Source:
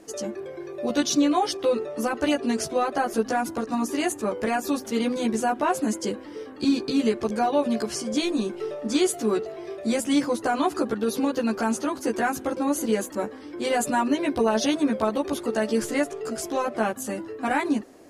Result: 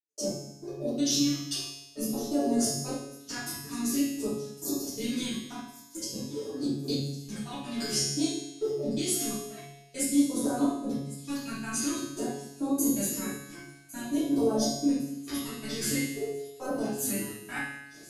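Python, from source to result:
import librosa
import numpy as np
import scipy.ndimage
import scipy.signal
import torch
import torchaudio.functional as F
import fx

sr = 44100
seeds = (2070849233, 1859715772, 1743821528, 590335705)

p1 = scipy.signal.sosfilt(scipy.signal.butter(2, 94.0, 'highpass', fs=sr, output='sos'), x)
p2 = fx.high_shelf(p1, sr, hz=11000.0, db=7.0)
p3 = fx.over_compress(p2, sr, threshold_db=-27.0, ratio=-0.5)
p4 = p2 + (p3 * 10.0 ** (3.0 / 20.0))
p5 = fx.step_gate(p4, sr, bpm=169, pattern='..x....x.x.xxxx', floor_db=-60.0, edge_ms=4.5)
p6 = fx.phaser_stages(p5, sr, stages=2, low_hz=470.0, high_hz=2200.0, hz=0.5, feedback_pct=35)
p7 = fx.comb_fb(p6, sr, f0_hz=140.0, decay_s=1.0, harmonics='all', damping=0.0, mix_pct=90)
p8 = p7 + fx.echo_wet_highpass(p7, sr, ms=1106, feedback_pct=62, hz=3500.0, wet_db=-16.5, dry=0)
p9 = fx.room_shoebox(p8, sr, seeds[0], volume_m3=79.0, walls='mixed', distance_m=2.8)
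y = p9 * 10.0 ** (-3.0 / 20.0)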